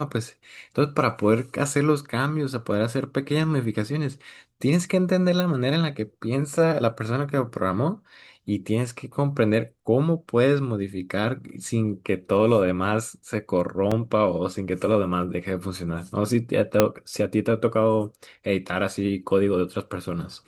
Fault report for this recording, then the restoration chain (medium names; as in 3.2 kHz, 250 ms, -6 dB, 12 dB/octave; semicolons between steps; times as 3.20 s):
5.40 s: pop -11 dBFS
13.91 s: dropout 5 ms
16.80 s: pop -2 dBFS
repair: de-click; interpolate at 13.91 s, 5 ms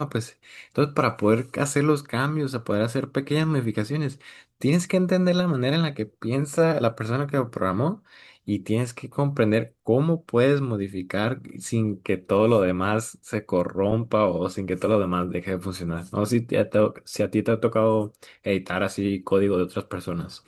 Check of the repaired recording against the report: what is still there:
16.80 s: pop